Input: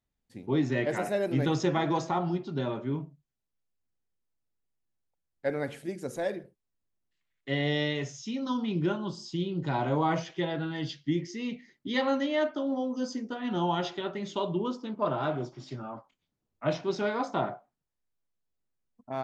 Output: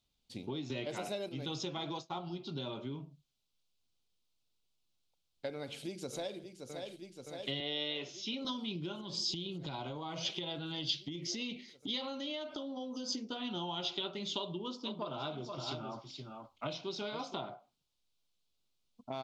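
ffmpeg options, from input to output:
-filter_complex "[0:a]asplit=3[s0][s1][s2];[s0]afade=t=out:st=1.95:d=0.02[s3];[s1]agate=range=0.0224:threshold=0.0447:ratio=3:release=100:detection=peak,afade=t=in:st=1.95:d=0.02,afade=t=out:st=2.35:d=0.02[s4];[s2]afade=t=in:st=2.35:d=0.02[s5];[s3][s4][s5]amix=inputs=3:normalize=0,asplit=2[s6][s7];[s7]afade=t=in:st=5.55:d=0.01,afade=t=out:st=6.39:d=0.01,aecho=0:1:570|1140|1710|2280|2850|3420|3990|4560|5130|5700|6270|6840:0.199526|0.159621|0.127697|0.102157|0.0817259|0.0653808|0.0523046|0.0418437|0.0334749|0.02678|0.021424|0.0171392[s8];[s6][s8]amix=inputs=2:normalize=0,asettb=1/sr,asplit=3[s9][s10][s11];[s9]atrim=end=7.604[s12];[s10]atrim=start=7.6:end=8.45,asetpts=PTS-STARTPTS,afade=t=in:d=0.004:c=qsin,afade=t=out:st=0.846:d=0.004:c=qsin,highpass=290,lowpass=3300[s13];[s11]atrim=start=8.446[s14];[s12][s13]acrossfade=d=0.004:c1=hsin:c2=qsin[s15];[s15][s14]acrossfade=d=0.004:c1=qsin:c2=hsin,asettb=1/sr,asplit=3[s16][s17][s18];[s16]atrim=end=9.014[s19];[s17]atrim=start=9.01:end=13.13,asetpts=PTS-STARTPTS,afade=t=in:d=0.004:c=qsin,afade=t=out:st=4.116:d=0.004:c=qsin,acompressor=threshold=0.0158:ratio=6:attack=3.2:release=140:knee=1:detection=peak[s20];[s18]atrim=start=13.126[s21];[s19][s20]acrossfade=d=0.004:c1=hsin:c2=qsin[s22];[s22][s21]acrossfade=d=0.004:c1=qsin:c2=hsin,asplit=3[s23][s24][s25];[s23]afade=t=out:st=14.85:d=0.02[s26];[s24]aecho=1:1:471:0.299,afade=t=in:st=14.85:d=0.02,afade=t=out:st=17.36:d=0.02[s27];[s25]afade=t=in:st=17.36:d=0.02[s28];[s26][s27][s28]amix=inputs=3:normalize=0,asplit=3[s29][s30][s31];[s29]atrim=end=0.702[s32];[s30]atrim=start=0.698:end=1.292,asetpts=PTS-STARTPTS,volume=2.11[s33];[s31]atrim=start=1.288[s34];[s32][s33]acrossfade=d=0.004:c1=hsin:c2=hsin[s35];[s35][s34]acrossfade=d=0.004:c1=hsin:c2=hsin,equalizer=f=1800:t=o:w=0.38:g=-15,acompressor=threshold=0.01:ratio=6,equalizer=f=3700:t=o:w=1.6:g=14.5,volume=1.12"

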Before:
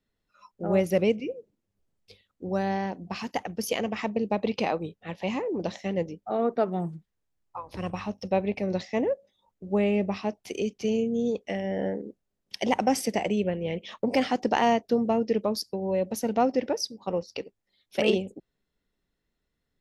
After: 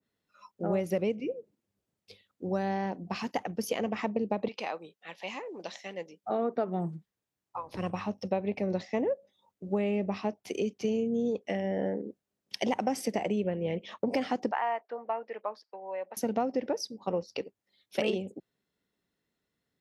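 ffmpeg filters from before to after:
-filter_complex "[0:a]asettb=1/sr,asplit=3[s0][s1][s2];[s0]atrim=end=4.484[s3];[s1]atrim=start=4.48:end=6.24,asetpts=PTS-STARTPTS,afade=t=in:d=0.004:c=qsin,afade=t=out:st=1.756:d=0.004:c=qsin,highpass=f=1500:p=1[s4];[s2]atrim=start=6.236[s5];[s3][s4]acrossfade=d=0.004:c1=hsin:c2=qsin[s6];[s6][s5]acrossfade=d=0.004:c1=qsin:c2=hsin,asettb=1/sr,asplit=3[s7][s8][s9];[s7]atrim=end=14.514[s10];[s8]atrim=start=14.51:end=16.17,asetpts=PTS-STARTPTS,afade=t=in:d=0.004:c=qsin,afade=t=out:st=1.656:d=0.004:c=qsin,asuperpass=centerf=1300:order=4:qfactor=0.88[s11];[s9]atrim=start=16.166[s12];[s10][s11]acrossfade=d=0.004:c1=hsin:c2=qsin[s13];[s13][s12]acrossfade=d=0.004:c1=qsin:c2=hsin,highpass=110,acompressor=threshold=0.0562:ratio=6,adynamicequalizer=threshold=0.00355:dfrequency=2000:dqfactor=0.7:tfrequency=2000:tqfactor=0.7:attack=5:release=100:ratio=0.375:range=3:mode=cutabove:tftype=highshelf"

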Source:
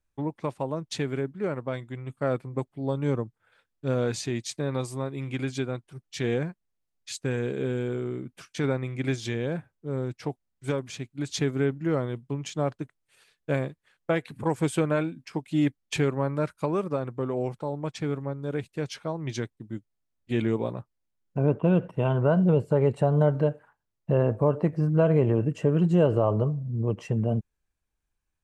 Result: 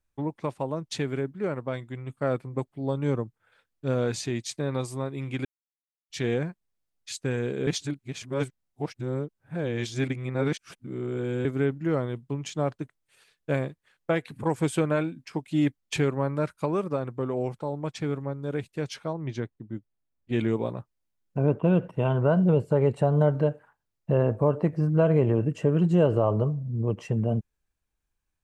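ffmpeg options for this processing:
-filter_complex "[0:a]asettb=1/sr,asplit=3[s0][s1][s2];[s0]atrim=end=19.134[s3];[s1]atrim=start=19.13:end=20.33,asetpts=PTS-STARTPTS,afade=t=in:d=0.004:c=qsin,afade=t=out:st=1.196:d=0.004:c=qsin,lowpass=f=1600:p=1[s4];[s2]atrim=start=20.326[s5];[s3][s4]acrossfade=d=0.004:c1=hsin:c2=qsin[s6];[s6][s5]acrossfade=d=0.004:c1=qsin:c2=hsin,asplit=5[s7][s8][s9][s10][s11];[s7]atrim=end=5.45,asetpts=PTS-STARTPTS,afade=t=out:st=5.446:d=0.004:c=hsin[s12];[s8]atrim=start=5.45:end=6.1,asetpts=PTS-STARTPTS,volume=0[s13];[s9]atrim=start=6.1:end=7.672,asetpts=PTS-STARTPTS,afade=t=in:d=0.004:c=hsin[s14];[s10]atrim=start=7.668:end=11.452,asetpts=PTS-STARTPTS,areverse[s15];[s11]atrim=start=11.448[s16];[s12][s13][s14]concat=n=3:v=0:a=1[s17];[s17][s15]acrossfade=d=0.004:c1=hsin:c2=hsin[s18];[s18][s16]acrossfade=d=0.004:c1=hsin:c2=hsin"

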